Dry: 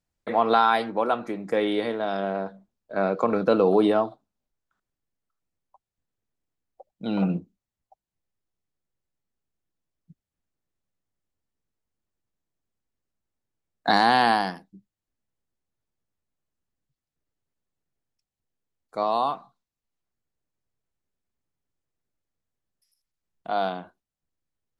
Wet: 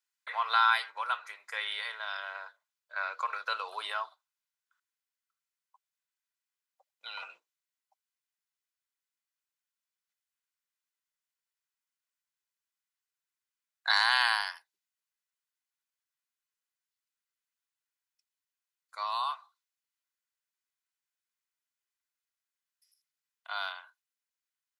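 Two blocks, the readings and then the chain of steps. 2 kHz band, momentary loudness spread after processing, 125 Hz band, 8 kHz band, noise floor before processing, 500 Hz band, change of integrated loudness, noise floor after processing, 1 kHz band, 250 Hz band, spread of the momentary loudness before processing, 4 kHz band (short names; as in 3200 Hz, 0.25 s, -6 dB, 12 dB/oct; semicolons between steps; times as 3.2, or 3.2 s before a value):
0.0 dB, 20 LU, under -40 dB, n/a, under -85 dBFS, -25.5 dB, -7.0 dB, under -85 dBFS, -8.5 dB, under -40 dB, 14 LU, +0.5 dB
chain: HPF 1200 Hz 24 dB/oct; comb 2 ms, depth 33%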